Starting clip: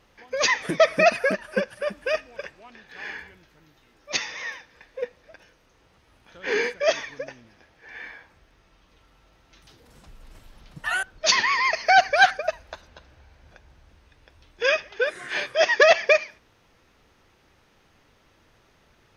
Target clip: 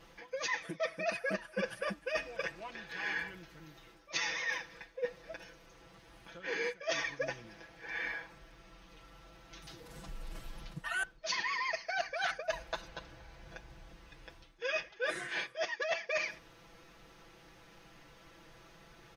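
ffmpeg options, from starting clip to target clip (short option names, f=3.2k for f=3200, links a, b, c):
-af "aecho=1:1:6:0.91,areverse,acompressor=threshold=-32dB:ratio=16,areverse"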